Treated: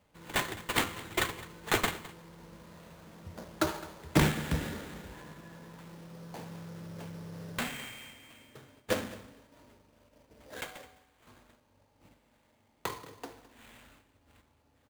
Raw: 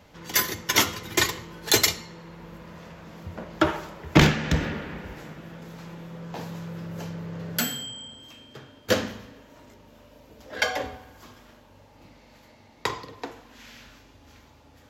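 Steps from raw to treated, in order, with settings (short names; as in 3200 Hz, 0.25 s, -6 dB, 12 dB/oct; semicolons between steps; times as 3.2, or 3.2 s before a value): gate -51 dBFS, range -7 dB; 10.61–11.27 pre-emphasis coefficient 0.8; sample-rate reducer 5400 Hz, jitter 20%; 5.12–5.81 small resonant body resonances 1000/1700 Hz, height 10 dB; echo 0.211 s -18.5 dB; gain -8 dB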